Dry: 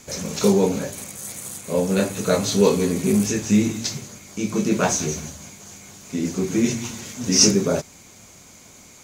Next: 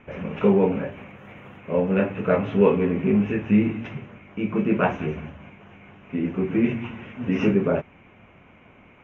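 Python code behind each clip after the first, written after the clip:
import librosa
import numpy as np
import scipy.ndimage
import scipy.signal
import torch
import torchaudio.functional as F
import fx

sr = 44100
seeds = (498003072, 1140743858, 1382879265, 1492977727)

y = scipy.signal.sosfilt(scipy.signal.ellip(4, 1.0, 40, 2800.0, 'lowpass', fs=sr, output='sos'), x)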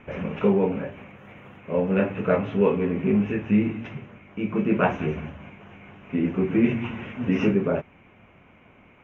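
y = fx.rider(x, sr, range_db=4, speed_s=0.5)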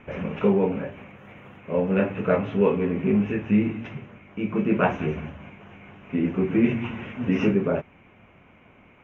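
y = x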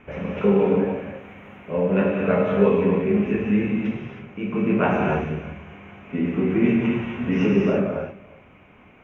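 y = x + 10.0 ** (-22.5 / 20.0) * np.pad(x, (int(345 * sr / 1000.0), 0))[:len(x)]
y = fx.rev_gated(y, sr, seeds[0], gate_ms=340, shape='flat', drr_db=-1.5)
y = F.gain(torch.from_numpy(y), -1.0).numpy()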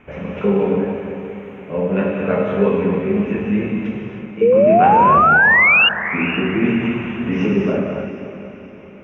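y = fx.spec_paint(x, sr, seeds[1], shape='rise', start_s=4.41, length_s=1.48, low_hz=440.0, high_hz=2900.0, level_db=-13.0)
y = fx.echo_diffused(y, sr, ms=503, feedback_pct=42, wet_db=-12)
y = F.gain(torch.from_numpy(y), 1.5).numpy()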